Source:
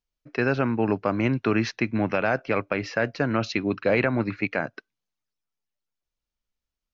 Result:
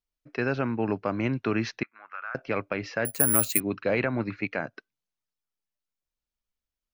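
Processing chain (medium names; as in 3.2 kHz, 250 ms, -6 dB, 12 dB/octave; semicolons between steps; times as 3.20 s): 1.83–2.35 s: ladder band-pass 1.4 kHz, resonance 70%; 3.05–3.60 s: careless resampling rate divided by 4×, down filtered, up zero stuff; trim -4 dB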